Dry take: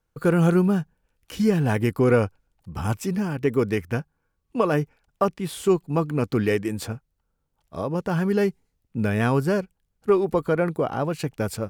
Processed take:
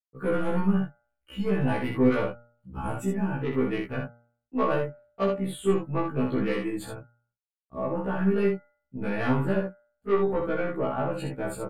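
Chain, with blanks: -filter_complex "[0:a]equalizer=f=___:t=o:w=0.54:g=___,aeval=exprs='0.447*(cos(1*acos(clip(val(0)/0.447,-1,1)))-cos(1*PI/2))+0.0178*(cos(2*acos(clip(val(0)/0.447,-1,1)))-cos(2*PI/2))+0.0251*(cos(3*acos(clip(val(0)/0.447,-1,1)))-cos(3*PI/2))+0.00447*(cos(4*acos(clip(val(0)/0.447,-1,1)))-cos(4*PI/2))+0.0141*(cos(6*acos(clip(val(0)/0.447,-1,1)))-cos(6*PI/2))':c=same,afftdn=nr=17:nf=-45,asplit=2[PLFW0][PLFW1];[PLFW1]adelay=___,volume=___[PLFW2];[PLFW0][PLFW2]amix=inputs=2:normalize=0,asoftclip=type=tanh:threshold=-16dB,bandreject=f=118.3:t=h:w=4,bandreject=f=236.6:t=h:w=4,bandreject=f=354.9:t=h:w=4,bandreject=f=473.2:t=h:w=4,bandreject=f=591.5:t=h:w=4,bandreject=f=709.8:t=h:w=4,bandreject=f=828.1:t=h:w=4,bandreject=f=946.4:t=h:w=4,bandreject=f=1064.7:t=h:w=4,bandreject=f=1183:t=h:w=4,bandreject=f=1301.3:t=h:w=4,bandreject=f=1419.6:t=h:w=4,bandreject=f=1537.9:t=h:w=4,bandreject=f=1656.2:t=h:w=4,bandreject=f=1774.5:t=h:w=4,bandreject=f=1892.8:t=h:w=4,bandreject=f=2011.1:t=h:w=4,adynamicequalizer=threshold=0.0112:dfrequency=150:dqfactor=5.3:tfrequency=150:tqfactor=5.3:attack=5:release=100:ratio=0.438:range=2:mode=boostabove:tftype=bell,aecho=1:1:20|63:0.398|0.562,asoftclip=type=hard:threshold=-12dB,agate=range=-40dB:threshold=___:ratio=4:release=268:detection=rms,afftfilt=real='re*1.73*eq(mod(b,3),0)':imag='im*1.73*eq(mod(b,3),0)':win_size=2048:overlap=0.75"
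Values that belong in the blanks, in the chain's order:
5500, -12, 12, -7dB, -50dB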